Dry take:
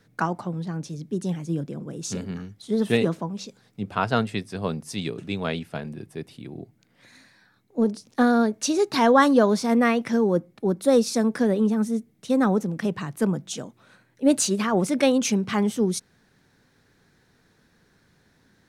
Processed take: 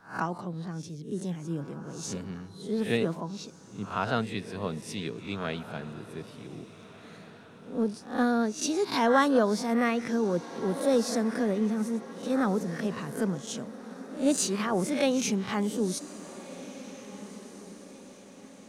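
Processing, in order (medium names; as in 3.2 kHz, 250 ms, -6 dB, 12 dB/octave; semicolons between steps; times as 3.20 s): reverse spectral sustain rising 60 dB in 0.36 s; echo that smears into a reverb 1677 ms, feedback 46%, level -15.5 dB; trim -6.5 dB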